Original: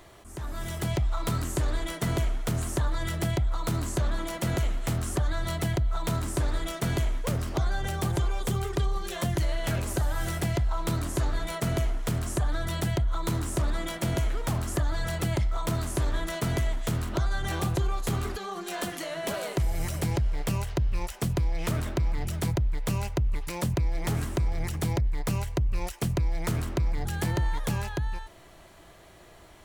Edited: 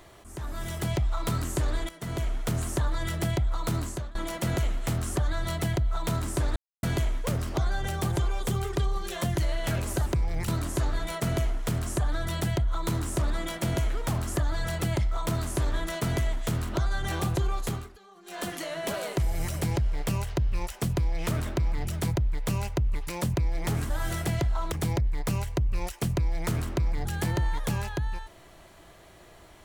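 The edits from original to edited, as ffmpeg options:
-filter_complex "[0:a]asplit=11[a][b][c][d][e][f][g][h][i][j][k];[a]atrim=end=1.89,asetpts=PTS-STARTPTS,afade=t=out:st=1.886:d=0.004:c=hsin:silence=0.16788[l];[b]atrim=start=1.89:end=4.15,asetpts=PTS-STARTPTS,afade=t=in:d=0.5:silence=0.16788,afade=t=out:st=1.89:d=0.37:silence=0.0668344[m];[c]atrim=start=4.15:end=6.56,asetpts=PTS-STARTPTS,afade=t=in:d=0.004:c=hsin:silence=0.0668344,afade=t=out:st=2.406:d=0.004:c=hsin[n];[d]atrim=start=6.56:end=6.83,asetpts=PTS-STARTPTS,volume=0[o];[e]atrim=start=6.83:end=10.062,asetpts=PTS-STARTPTS,afade=t=in:d=0.004:c=hsin[p];[f]atrim=start=24.298:end=24.722[q];[g]atrim=start=10.878:end=18.29,asetpts=PTS-STARTPTS,afade=t=out:st=7.152:d=0.26:silence=0.133352[r];[h]atrim=start=18.29:end=18.62,asetpts=PTS-STARTPTS,volume=-17.5dB[s];[i]atrim=start=18.62:end=24.302,asetpts=PTS-STARTPTS,afade=t=in:d=0.26:silence=0.133352[t];[j]atrim=start=10.058:end=10.882[u];[k]atrim=start=24.718[v];[l][m][n][o][p]concat=n=5:v=0:a=1[w];[w][q]acrossfade=d=0.004:c1=hsin:c2=hsin[x];[r][s][t]concat=n=3:v=0:a=1[y];[x][y]acrossfade=d=0.004:c1=hsin:c2=hsin[z];[z][u]acrossfade=d=0.004:c1=hsin:c2=hsin[aa];[aa][v]acrossfade=d=0.004:c1=hsin:c2=hsin"

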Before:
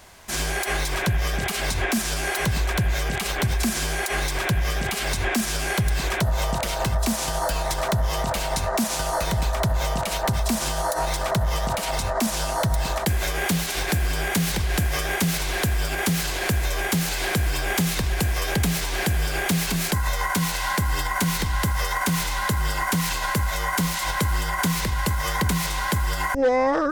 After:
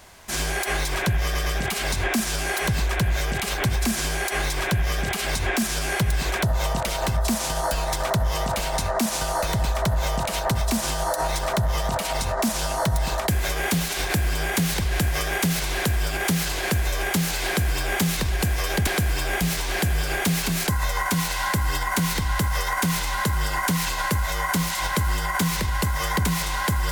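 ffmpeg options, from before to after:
-filter_complex "[0:a]asplit=5[a][b][c][d][e];[a]atrim=end=1.352[f];[b]atrim=start=1.238:end=1.352[g];[c]atrim=start=1.238:end=18.652[h];[d]atrim=start=17.238:end=17.782[i];[e]atrim=start=18.648[j];[f][g]acrossfade=d=0.004:c1=hsin:c2=hsin[k];[k][h]acrossfade=d=0.004:c1=hsin:c2=hsin[l];[l][i]acrossfade=d=0.004:c1=hsin:c2=hsin[m];[m][j]acrossfade=d=0.004:c1=hsin:c2=hsin"

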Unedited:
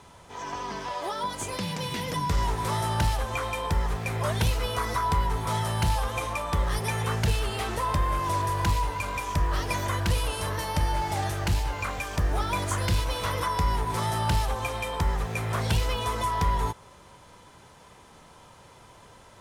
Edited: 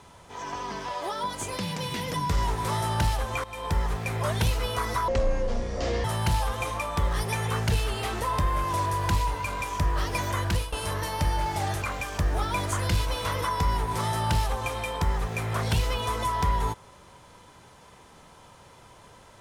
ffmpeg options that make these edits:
-filter_complex "[0:a]asplit=6[a][b][c][d][e][f];[a]atrim=end=3.44,asetpts=PTS-STARTPTS,afade=t=out:st=3.436:d=0.004:c=hsin:silence=0.158489[g];[b]atrim=start=3.44:end=5.084,asetpts=PTS-STARTPTS,afade=t=in:d=0.3:silence=0.158489[h];[c]atrim=start=5.08:end=5.6,asetpts=PTS-STARTPTS,asetrate=23814,aresample=44100[i];[d]atrim=start=5.596:end=10.28,asetpts=PTS-STARTPTS,afade=t=out:st=4.414:d=0.27:c=qsin:silence=0.149624[j];[e]atrim=start=10.28:end=11.382,asetpts=PTS-STARTPTS,afade=t=in:d=0.004:c=hsin:silence=0.149624[k];[f]atrim=start=11.808[l];[g][h]concat=n=2:v=0:a=1[m];[m][i]acrossfade=d=0.004:c1=hsin:c2=hsin[n];[j][k]concat=n=2:v=0:a=1[o];[n][o]acrossfade=d=0.004:c1=hsin:c2=hsin[p];[p][l]acrossfade=d=0.004:c1=hsin:c2=hsin"

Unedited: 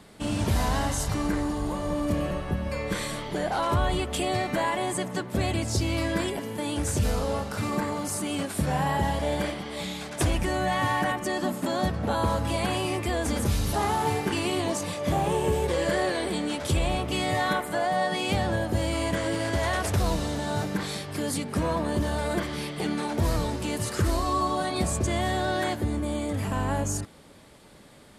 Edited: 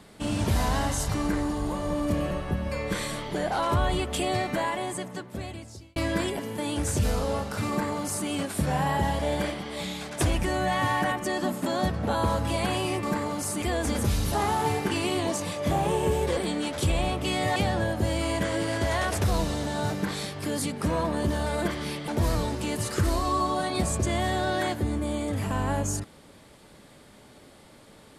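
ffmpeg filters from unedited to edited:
-filter_complex "[0:a]asplit=7[a][b][c][d][e][f][g];[a]atrim=end=5.96,asetpts=PTS-STARTPTS,afade=t=out:st=4.37:d=1.59[h];[b]atrim=start=5.96:end=13.032,asetpts=PTS-STARTPTS,afade=t=in:d=0.004:c=hsin[i];[c]atrim=start=7.688:end=8.282[j];[d]atrim=start=13.028:end=15.782[k];[e]atrim=start=16.238:end=17.432[l];[f]atrim=start=18.278:end=22.802[m];[g]atrim=start=23.088[n];[h][i]concat=n=2:v=0:a=1[o];[o][j]acrossfade=d=0.004:c1=hsin:c2=hsin[p];[p][k]acrossfade=d=0.004:c1=hsin:c2=hsin[q];[q][l]acrossfade=d=0.004:c1=hsin:c2=hsin[r];[r][m]acrossfade=d=0.004:c1=hsin:c2=hsin[s];[s][n]acrossfade=d=0.004:c1=hsin:c2=hsin"

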